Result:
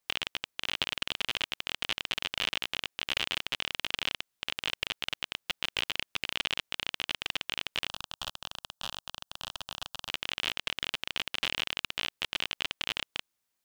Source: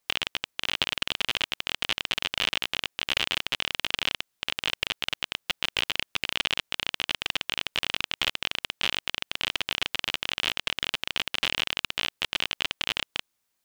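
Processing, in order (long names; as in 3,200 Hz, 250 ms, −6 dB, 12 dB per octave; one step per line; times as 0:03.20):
0:07.88–0:10.09: phaser with its sweep stopped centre 900 Hz, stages 4
level −4.5 dB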